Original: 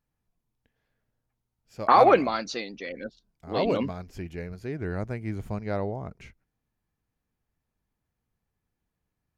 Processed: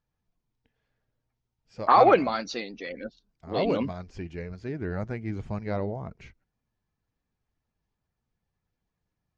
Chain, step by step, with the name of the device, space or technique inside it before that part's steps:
clip after many re-uploads (low-pass filter 6,400 Hz 24 dB per octave; spectral magnitudes quantised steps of 15 dB)

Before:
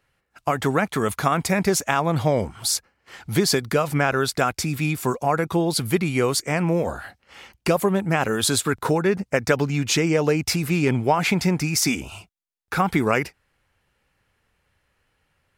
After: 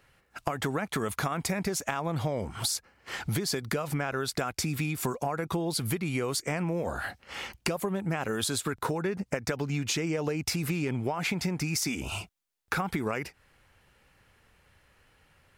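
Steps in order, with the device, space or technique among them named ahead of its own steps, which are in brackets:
serial compression, peaks first (downward compressor, threshold −28 dBFS, peak gain reduction 14 dB; downward compressor 2 to 1, threshold −37 dBFS, peak gain reduction 7 dB)
level +6 dB

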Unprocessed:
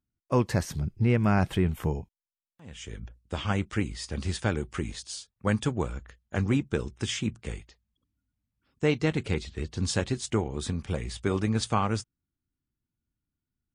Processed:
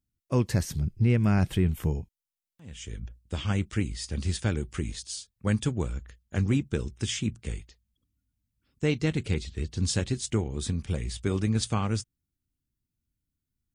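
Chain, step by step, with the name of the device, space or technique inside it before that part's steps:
smiley-face EQ (low-shelf EQ 110 Hz +4.5 dB; parametric band 920 Hz −7 dB 1.9 octaves; high-shelf EQ 7,000 Hz +4.5 dB)

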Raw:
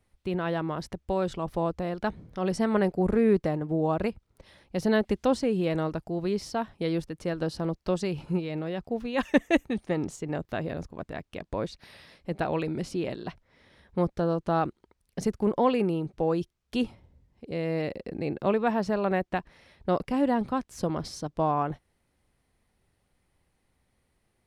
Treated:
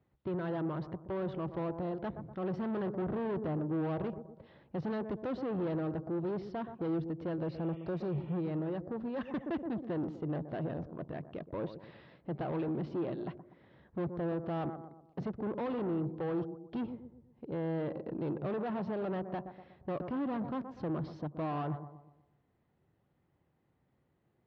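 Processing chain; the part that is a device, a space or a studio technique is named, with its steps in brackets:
analogue delay pedal into a guitar amplifier (bucket-brigade delay 122 ms, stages 1,024, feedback 41%, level −16 dB; tube saturation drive 33 dB, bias 0.35; loudspeaker in its box 92–4,000 Hz, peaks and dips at 140 Hz +7 dB, 330 Hz +4 dB, 2,300 Hz −4 dB)
0:07.47–0:08.35: healed spectral selection 1,800–3,600 Hz
low-pass filter 1,300 Hz 6 dB per octave
0:08.77–0:09.21: parametric band 2,900 Hz −6 dB 0.9 octaves

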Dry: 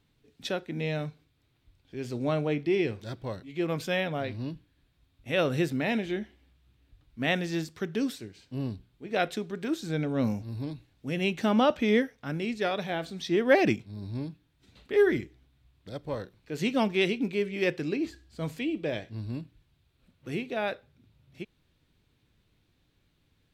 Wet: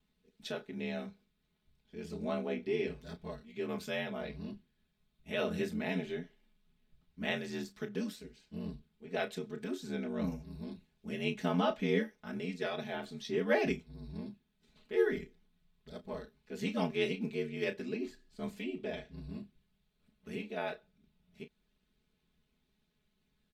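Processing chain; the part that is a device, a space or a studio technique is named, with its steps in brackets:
double-tracking delay 31 ms −10 dB
ring-modulated robot voice (ring modulation 43 Hz; comb filter 4.7 ms, depth 99%)
level −8 dB

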